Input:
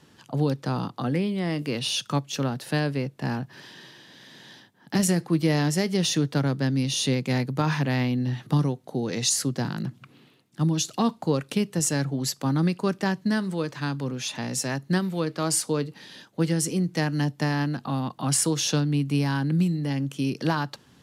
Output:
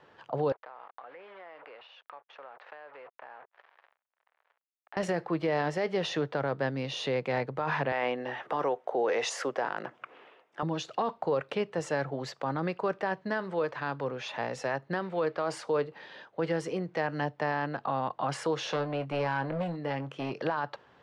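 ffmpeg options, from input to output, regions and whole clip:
-filter_complex "[0:a]asettb=1/sr,asplit=3[a][b][c];[a]atrim=end=0.524[d];[b]atrim=start=0.52:end=4.97,asetpts=PTS-STARTPTS,afade=t=in:d=0.004:c=qsin,afade=t=out:st=4.446:d=0.004:c=qsin,acrusher=bits=5:mix=0:aa=0.5,highpass=690,lowpass=2.4k,acompressor=threshold=-46dB:ratio=8:attack=3.2:release=140:knee=1:detection=peak[e];[c]atrim=start=4.966[f];[d][e]acrossfade=d=0.004:c1=hsin:c2=qsin[g];[g][f]acrossfade=d=0.004:c1=qsin:c2=hsin,asettb=1/sr,asplit=3[h][i][j];[h]atrim=end=7.924[k];[i]atrim=start=7.92:end=10.63,asetpts=PTS-STARTPTS,afade=t=in:d=0.004:c=qsin,afade=t=out:st=2.706:d=0.004:c=qsin,highpass=400,equalizer=f=4.2k:w=4:g=-10,acontrast=53[l];[j]atrim=start=10.626[m];[k][l]acrossfade=d=0.004:c1=hsin:c2=qsin[n];[n][m]acrossfade=d=0.004:c1=qsin:c2=hsin,asettb=1/sr,asplit=3[o][p][q];[o]atrim=end=18.654[r];[p]atrim=start=18.65:end=20.43,asetpts=PTS-STARTPTS,afade=t=in:d=0.004:c=qsin,afade=t=out:st=1.776:d=0.004:c=qsin,volume=22dB,asoftclip=hard,volume=-22dB,asplit=2[s][t];[t]adelay=23,volume=-11.5dB[u];[s][u]amix=inputs=2:normalize=0,atrim=end_sample=78498[v];[q]atrim=start=20.426[w];[r][v]acrossfade=d=0.004:c1=hsin:c2=qsin[x];[x][w]acrossfade=d=0.004:c1=qsin:c2=hsin,lowpass=2k,lowshelf=f=360:t=q:w=1.5:g=-12,alimiter=limit=-22.5dB:level=0:latency=1:release=19,volume=2.5dB"

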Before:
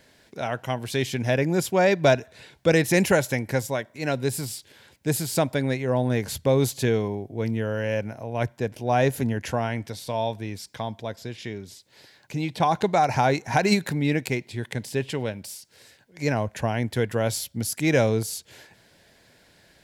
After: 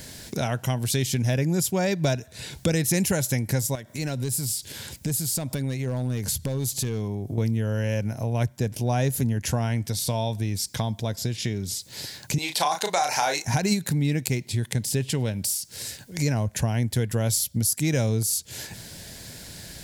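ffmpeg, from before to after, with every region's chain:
-filter_complex "[0:a]asettb=1/sr,asplit=3[a][b][c];[a]atrim=end=3.754[d];[b]atrim=start=3.75:end=7.38,asetpts=PTS-STARTPTS,afade=t=in:d=0.004:c=qsin,afade=t=out:st=3.626:d=0.004:c=qsin,acompressor=threshold=-42dB:ratio=2:attack=3.2:release=140:knee=1:detection=peak,volume=28.5dB,asoftclip=hard,volume=-28.5dB[e];[c]atrim=start=7.376[f];[d][e]acrossfade=d=0.004:c1=hsin:c2=qsin[g];[g][f]acrossfade=d=0.004:c1=qsin:c2=hsin,asettb=1/sr,asplit=3[h][i][j];[h]atrim=end=12.384[k];[i]atrim=start=12.38:end=13.45,asetpts=PTS-STARTPTS,afade=t=in:d=0.004:c=qsin,afade=t=out:st=1.066:d=0.004:c=qsin,highpass=700,acontrast=39,asplit=2[l][m];[m]adelay=34,volume=-6dB[n];[l][n]amix=inputs=2:normalize=0,atrim=end_sample=47187[o];[j]atrim=start=13.446[p];[k][o]acrossfade=d=0.004:c1=hsin:c2=qsin[q];[q][p]acrossfade=d=0.004:c1=qsin:c2=hsin,bass=f=250:g=11,treble=f=4k:g=14,acompressor=threshold=-36dB:ratio=3,volume=9dB"

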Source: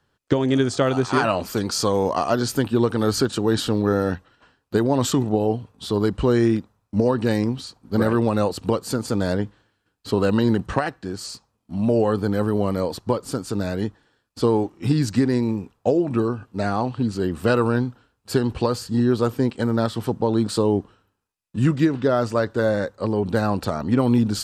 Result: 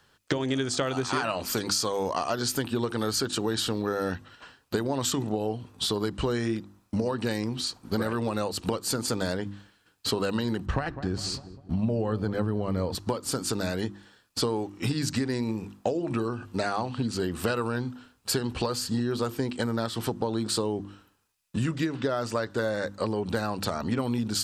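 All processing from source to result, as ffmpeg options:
-filter_complex "[0:a]asettb=1/sr,asplit=3[a][b][c];[a]atrim=end=10.654[d];[b]atrim=start=10.65:end=12.95,asetpts=PTS-STARTPTS,afade=t=in:d=0.004:c=qsin,afade=t=out:st=2.296:d=0.004:c=qsin,aemphasis=mode=reproduction:type=bsi,asplit=2[e][f];[f]adelay=201,lowpass=f=930:p=1,volume=-17.5dB,asplit=2[g][h];[h]adelay=201,lowpass=f=930:p=1,volume=0.49,asplit=2[i][j];[j]adelay=201,lowpass=f=930:p=1,volume=0.49,asplit=2[k][l];[l]adelay=201,lowpass=f=930:p=1,volume=0.49[m];[e][g][i][k][m]amix=inputs=5:normalize=0,atrim=end_sample=101430[n];[c]atrim=start=12.946[o];[d][n]acrossfade=d=0.004:c1=hsin:c2=qsin[p];[p][o]acrossfade=d=0.004:c1=qsin:c2=hsin,tiltshelf=f=1.3k:g=-4,bandreject=f=50:t=h:w=6,bandreject=f=100:t=h:w=6,bandreject=f=150:t=h:w=6,bandreject=f=200:t=h:w=6,bandreject=f=250:t=h:w=6,bandreject=f=300:t=h:w=6,bandreject=f=350:t=h:w=6,acompressor=threshold=-33dB:ratio=5,volume=7dB"

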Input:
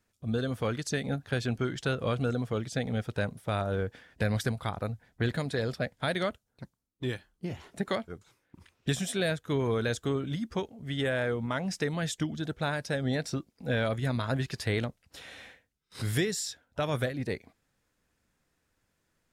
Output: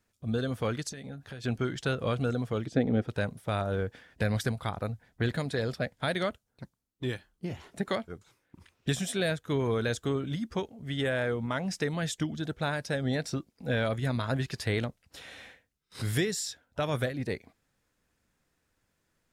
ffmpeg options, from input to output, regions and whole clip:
-filter_complex "[0:a]asettb=1/sr,asplit=3[a][b][c];[a]atrim=end=0.894[d];[b]atrim=start=0.89:end=1.44,asetpts=PTS-STARTPTS,afade=t=in:d=0.004:c=qsin,afade=t=out:st=0.546:d=0.004:c=qsin,acompressor=threshold=-39dB:ratio=8:attack=3.2:release=140:knee=1:detection=peak,asplit=2[e][f];[f]adelay=15,volume=-11.5dB[g];[e][g]amix=inputs=2:normalize=0,atrim=end_sample=24255[h];[c]atrim=start=1.436[i];[d][h]acrossfade=d=0.004:c1=hsin:c2=qsin[j];[j][i]acrossfade=d=0.004:c1=qsin:c2=hsin,asettb=1/sr,asplit=3[k][l][m];[k]atrim=end=2.664[n];[l]atrim=start=2.66:end=3.08,asetpts=PTS-STARTPTS,afade=t=in:d=0.004:c=qsin,afade=t=out:st=0.416:d=0.004:c=qsin,lowpass=f=2k:p=1,equalizer=f=320:w=1.3:g=12[o];[m]atrim=start=3.076[p];[n][o]acrossfade=d=0.004:c1=hsin:c2=qsin[q];[q][p]acrossfade=d=0.004:c1=qsin:c2=hsin"

